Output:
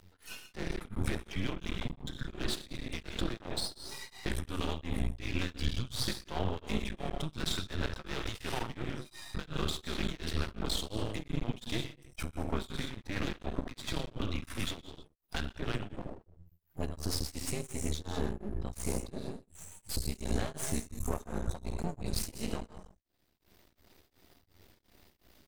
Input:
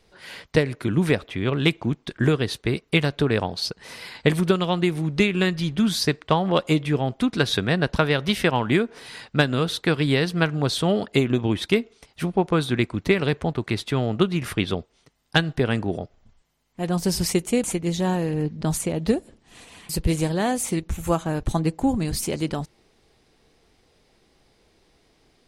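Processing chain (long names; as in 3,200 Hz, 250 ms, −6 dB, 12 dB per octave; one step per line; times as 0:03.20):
noise reduction from a noise print of the clip's start 29 dB
dynamic equaliser 4,100 Hz, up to +4 dB, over −42 dBFS, Q 1
brickwall limiter −18 dBFS, peak gain reduction 13.5 dB
upward compression, threshold −28 dBFS
single-tap delay 121 ms −13.5 dB
frequency shifter −98 Hz
reverb whose tail is shaped and stops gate 230 ms flat, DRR 4 dB
half-wave rectification
tremolo along a rectified sine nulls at 2.8 Hz
level −3 dB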